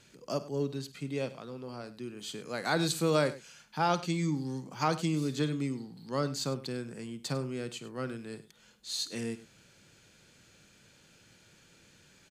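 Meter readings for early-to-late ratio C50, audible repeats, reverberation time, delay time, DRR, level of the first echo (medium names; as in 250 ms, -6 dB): no reverb, 2, no reverb, 52 ms, no reverb, -16.5 dB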